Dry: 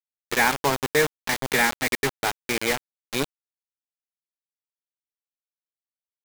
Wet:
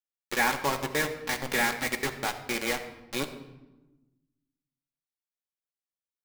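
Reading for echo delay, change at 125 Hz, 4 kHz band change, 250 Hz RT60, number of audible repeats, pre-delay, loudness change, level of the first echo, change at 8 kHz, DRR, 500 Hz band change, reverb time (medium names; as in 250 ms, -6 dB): no echo, -5.5 dB, -5.0 dB, 1.6 s, no echo, 4 ms, -5.0 dB, no echo, -5.5 dB, 5.0 dB, -6.5 dB, 1.1 s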